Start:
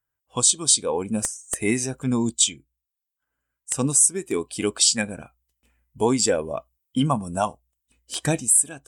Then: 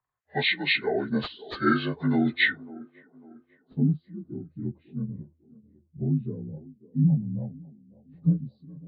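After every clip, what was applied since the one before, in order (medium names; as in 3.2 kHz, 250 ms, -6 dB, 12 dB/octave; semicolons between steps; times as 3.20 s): frequency axis rescaled in octaves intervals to 79%; low-pass sweep 1.8 kHz -> 150 Hz, 2.85–3.97 s; feedback echo behind a band-pass 548 ms, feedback 40%, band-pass 440 Hz, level -17 dB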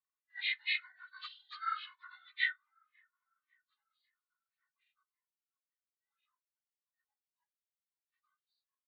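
steep high-pass 1.1 kHz 72 dB/octave; band-stop 1.6 kHz, Q 15; endless flanger 2.2 ms +0.87 Hz; trim -7 dB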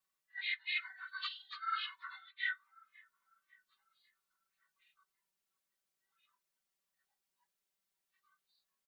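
comb 5.2 ms, depth 97%; reverse; compression 8:1, threshold -39 dBFS, peak gain reduction 16.5 dB; reverse; trim +4.5 dB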